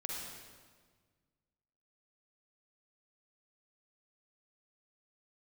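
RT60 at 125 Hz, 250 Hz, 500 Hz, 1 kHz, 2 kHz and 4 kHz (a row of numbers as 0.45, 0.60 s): 2.2, 2.0, 1.6, 1.5, 1.4, 1.3 s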